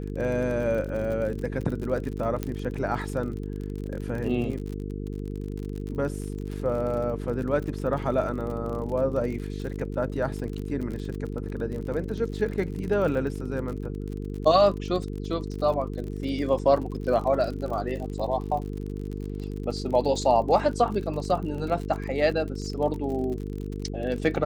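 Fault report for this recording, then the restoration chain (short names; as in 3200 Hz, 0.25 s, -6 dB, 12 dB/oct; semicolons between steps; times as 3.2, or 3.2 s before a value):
buzz 50 Hz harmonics 9 -33 dBFS
crackle 45/s -33 dBFS
2.43 pop -16 dBFS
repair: de-click; de-hum 50 Hz, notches 9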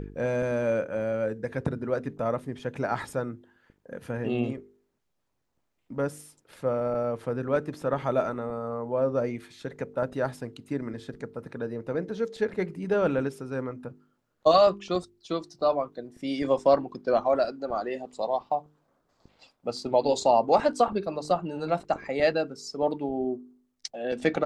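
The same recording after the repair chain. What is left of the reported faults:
none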